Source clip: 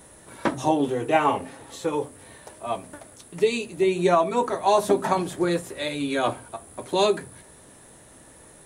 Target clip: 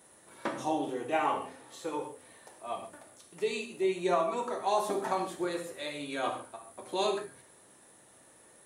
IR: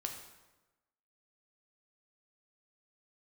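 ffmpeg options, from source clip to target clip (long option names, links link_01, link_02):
-filter_complex "[0:a]highpass=frequency=290:poles=1[link_01];[1:a]atrim=start_sample=2205,atrim=end_sample=6615[link_02];[link_01][link_02]afir=irnorm=-1:irlink=0,volume=-7dB"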